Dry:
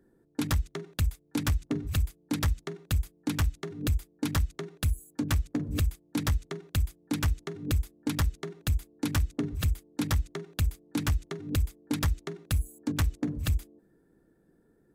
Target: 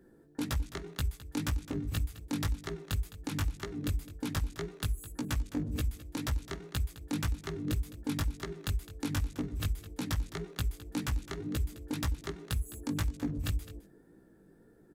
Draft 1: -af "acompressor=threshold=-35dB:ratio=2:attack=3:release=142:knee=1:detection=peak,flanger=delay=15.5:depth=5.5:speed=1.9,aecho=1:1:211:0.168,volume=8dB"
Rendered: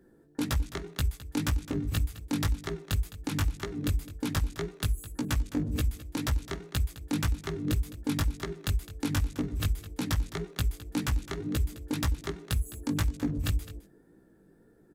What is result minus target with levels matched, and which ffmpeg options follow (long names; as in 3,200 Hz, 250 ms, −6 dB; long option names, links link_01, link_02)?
downward compressor: peak gain reduction −4 dB
-af "acompressor=threshold=-43dB:ratio=2:attack=3:release=142:knee=1:detection=peak,flanger=delay=15.5:depth=5.5:speed=1.9,aecho=1:1:211:0.168,volume=8dB"